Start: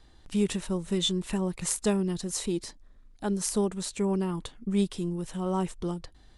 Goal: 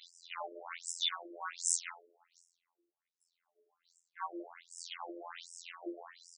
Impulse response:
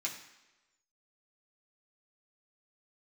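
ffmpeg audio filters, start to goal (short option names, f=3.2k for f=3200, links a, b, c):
-filter_complex "[0:a]aeval=exprs='0.282*sin(PI/2*4.47*val(0)/0.282)':c=same,asubboost=boost=10:cutoff=110,acompressor=threshold=-20dB:ratio=4,alimiter=limit=-17.5dB:level=0:latency=1:release=17,asettb=1/sr,asplit=3[a][b][c];[a]atrim=end=1.894[d];[b]atrim=start=1.89:end=4.17,asetpts=PTS-STARTPTS,afade=t=in:d=0.004:c=qsin,afade=t=out:st=2.276:d=0.004:c=qsin,agate=range=-34dB:threshold=-19dB:ratio=16:detection=peak[e];[c]atrim=start=4.166[f];[d][e]acrossfade=d=0.004:c1=hsin:c2=qsin[g];[g][f]acrossfade=d=0.004:c1=qsin:c2=hsin,aeval=exprs='0.133*(cos(1*acos(clip(val(0)/0.133,-1,1)))-cos(1*PI/2))+0.0299*(cos(4*acos(clip(val(0)/0.133,-1,1)))-cos(4*PI/2))+0.0473*(cos(6*acos(clip(val(0)/0.133,-1,1)))-cos(6*PI/2))':c=same,bandreject=f=60:t=h:w=6,bandreject=f=120:t=h:w=6,bandreject=f=180:t=h:w=6,bandreject=f=240:t=h:w=6,bandreject=f=300:t=h:w=6,bandreject=f=360:t=h:w=6,bandreject=f=420:t=h:w=6,bandreject=f=480:t=h:w=6,bandreject=f=540:t=h:w=6,bandreject=f=600:t=h:w=6,aecho=1:1:114|228|342|456:0.188|0.0904|0.0434|0.0208[h];[1:a]atrim=start_sample=2205,atrim=end_sample=4410[i];[h][i]afir=irnorm=-1:irlink=0,afftfilt=real='hypot(re,im)*cos(PI*b)':imag='0':win_size=2048:overlap=0.75,afftfilt=real='re*between(b*sr/1024,420*pow(7200/420,0.5+0.5*sin(2*PI*1.3*pts/sr))/1.41,420*pow(7200/420,0.5+0.5*sin(2*PI*1.3*pts/sr))*1.41)':imag='im*between(b*sr/1024,420*pow(7200/420,0.5+0.5*sin(2*PI*1.3*pts/sr))/1.41,420*pow(7200/420,0.5+0.5*sin(2*PI*1.3*pts/sr))*1.41)':win_size=1024:overlap=0.75,volume=-4dB"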